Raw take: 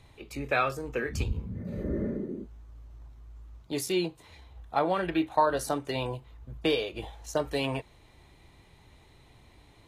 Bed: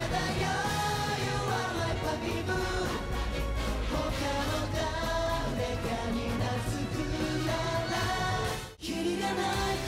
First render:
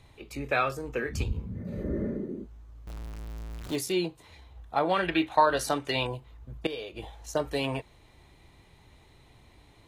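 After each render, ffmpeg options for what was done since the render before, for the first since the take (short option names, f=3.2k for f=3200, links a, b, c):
-filter_complex "[0:a]asettb=1/sr,asplit=3[a][b][c];[a]atrim=end=2.874[d];[b]atrim=start=2.87:end=3.76,asetpts=PTS-STARTPTS,afade=t=in:d=0.004:c=qsin,afade=t=out:st=0.886:d=0.004:c=qsin,aeval=exprs='val(0)+0.5*0.0168*sgn(val(0))':c=same[e];[c]atrim=start=3.756[f];[d][e]acrossfade=d=0.004:c1=hsin:c2=qsin[g];[g][f]acrossfade=d=0.004:c1=qsin:c2=hsin,asettb=1/sr,asplit=3[h][i][j];[h]atrim=end=4.894[k];[i]atrim=start=4.89:end=6.07,asetpts=PTS-STARTPTS,afade=t=in:d=0.004:c=qsin,afade=t=out:st=1.176:d=0.004:c=qsin,equalizer=f=2.8k:t=o:w=2.4:g=7.5[l];[j]atrim=start=6.066[m];[k][l]acrossfade=d=0.004:c1=hsin:c2=qsin[n];[n][m]acrossfade=d=0.004:c1=qsin:c2=hsin,asplit=2[o][p];[o]atrim=end=6.67,asetpts=PTS-STARTPTS,afade=t=out:st=6.666:d=0.004:c=hsin:silence=0.188365[q];[p]atrim=start=6.67,asetpts=PTS-STARTPTS,afade=t=in:d=0.64:c=qsin:silence=0.188365[r];[q][r]concat=n=2:v=0:a=1"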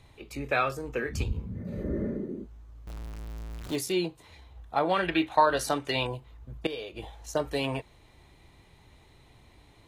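-af anull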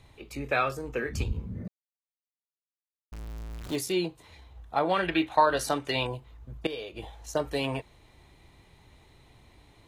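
-filter_complex "[0:a]asplit=3[a][b][c];[a]atrim=end=1.68,asetpts=PTS-STARTPTS,afade=t=out:st=1.676:d=0.004:c=hsin[d];[b]atrim=start=1.68:end=3.12,asetpts=PTS-STARTPTS,volume=0[e];[c]atrim=start=3.12,asetpts=PTS-STARTPTS,afade=t=in:d=0.004:c=hsin[f];[d][e][f]concat=n=3:v=0:a=1"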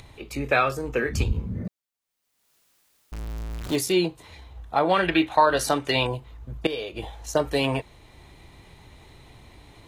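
-filter_complex "[0:a]asplit=2[a][b];[b]alimiter=limit=-17dB:level=0:latency=1:release=253,volume=0.5dB[c];[a][c]amix=inputs=2:normalize=0,acompressor=mode=upward:threshold=-44dB:ratio=2.5"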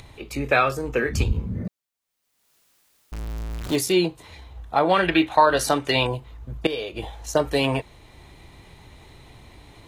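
-af "volume=2dB"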